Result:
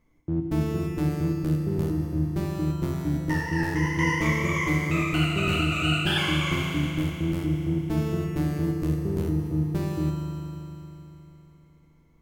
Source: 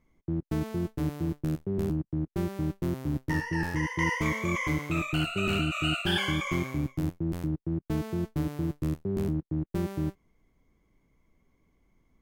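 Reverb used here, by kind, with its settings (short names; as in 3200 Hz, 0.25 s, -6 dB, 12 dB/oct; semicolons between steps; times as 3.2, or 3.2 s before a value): FDN reverb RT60 3.5 s, high-frequency decay 1×, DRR 1.5 dB; gain +1.5 dB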